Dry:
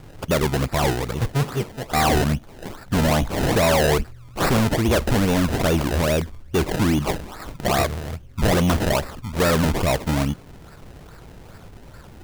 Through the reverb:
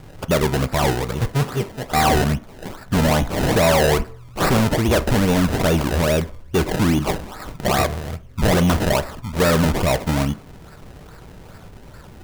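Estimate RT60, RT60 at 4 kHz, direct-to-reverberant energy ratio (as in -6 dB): 0.50 s, 0.45 s, 11.0 dB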